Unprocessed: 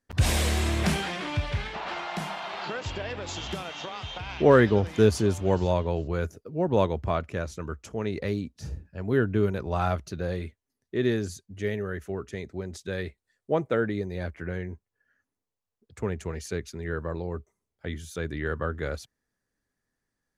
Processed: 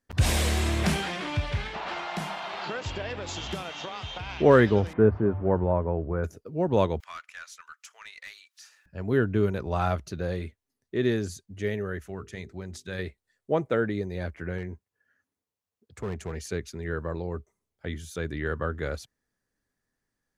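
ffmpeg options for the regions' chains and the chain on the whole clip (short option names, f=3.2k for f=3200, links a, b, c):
-filter_complex "[0:a]asettb=1/sr,asplit=3[a][b][c];[a]atrim=end=4.934[d];[b]atrim=start=4.93:end=6.24,asetpts=PTS-STARTPTS,afade=t=in:d=0.004:c=qsin,afade=t=out:st=1.306:d=0.004:c=qsin,lowpass=f=1.6k:w=0.5412,lowpass=f=1.6k:w=1.3066,bandreject=f=50:t=h:w=6,bandreject=f=100:t=h:w=6,bandreject=f=150:t=h:w=6[e];[c]atrim=start=6.236[f];[d][e]acrossfade=d=0.004:c1=hsin:c2=qsin[g];[g][f]acrossfade=d=0.004:c1=qsin:c2=hsin,asettb=1/sr,asplit=3[h][i][j];[h]atrim=end=7.004[k];[i]atrim=start=7:end=8.86,asetpts=PTS-STARTPTS,afade=t=in:d=0.004:c=qsin,afade=t=out:st=1.856:d=0.004:c=qsin,highpass=f=1.3k:w=0.5412,highpass=f=1.3k:w=1.3066,aeval=exprs='(tanh(44.7*val(0)+0.1)-tanh(0.1))/44.7':c=same,acompressor=mode=upward:threshold=-49dB:ratio=2.5:attack=3.2:release=140:knee=2.83:detection=peak[l];[j]atrim=start=8.856[m];[k][l]acrossfade=d=0.004:c1=hsin:c2=qsin[n];[n][m]acrossfade=d=0.004:c1=qsin:c2=hsin,asettb=1/sr,asplit=3[o][p][q];[o]atrim=end=12.014[r];[p]atrim=start=12.01:end=12.99,asetpts=PTS-STARTPTS,afade=t=in:d=0.004:c=qsin,afade=t=out:st=0.976:d=0.004:c=qsin,equalizer=f=420:t=o:w=1.5:g=-6,bandreject=f=50:t=h:w=6,bandreject=f=100:t=h:w=6,bandreject=f=150:t=h:w=6,bandreject=f=200:t=h:w=6,bandreject=f=250:t=h:w=6,bandreject=f=300:t=h:w=6,bandreject=f=350:t=h:w=6,bandreject=f=400:t=h:w=6,bandreject=f=450:t=h:w=6[s];[q]atrim=start=12.986[t];[r][s]acrossfade=d=0.004:c1=hsin:c2=qsin[u];[u][t]acrossfade=d=0.004:c1=qsin:c2=hsin,asettb=1/sr,asplit=3[v][w][x];[v]atrim=end=14.584[y];[w]atrim=start=14.58:end=16.33,asetpts=PTS-STARTPTS,afade=t=in:d=0.004:c=qsin,afade=t=out:st=1.746:d=0.004:c=qsin,highpass=f=40:p=1,asoftclip=type=hard:threshold=-27.5dB[z];[x]atrim=start=16.326[aa];[y][z]acrossfade=d=0.004:c1=hsin:c2=qsin[ab];[ab][aa]acrossfade=d=0.004:c1=qsin:c2=hsin"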